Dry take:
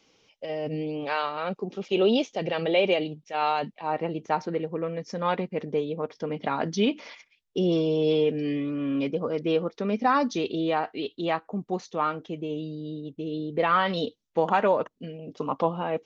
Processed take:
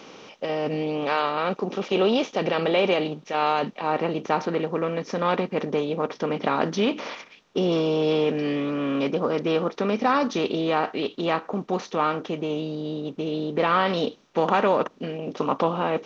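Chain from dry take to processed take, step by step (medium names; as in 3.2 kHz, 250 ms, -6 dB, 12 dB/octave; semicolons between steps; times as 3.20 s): spectral levelling over time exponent 0.6; trim -1.5 dB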